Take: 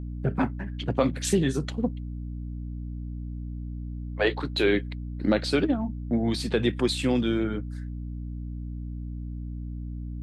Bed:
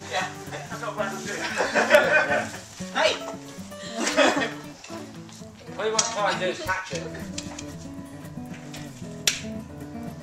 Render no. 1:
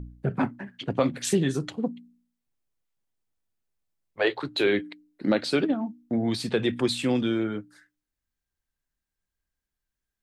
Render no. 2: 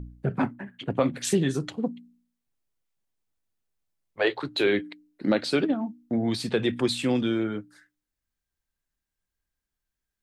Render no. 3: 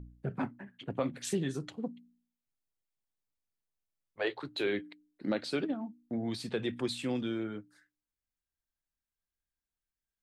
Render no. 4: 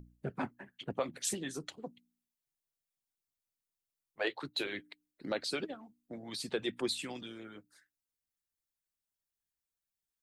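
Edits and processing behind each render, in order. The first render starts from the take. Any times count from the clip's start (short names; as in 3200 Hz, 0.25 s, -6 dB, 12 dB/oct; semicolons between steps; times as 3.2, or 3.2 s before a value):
de-hum 60 Hz, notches 5
0.53–1.13 bell 5200 Hz -10 dB 0.71 oct
gain -9 dB
harmonic-percussive split harmonic -15 dB; high shelf 4400 Hz +8 dB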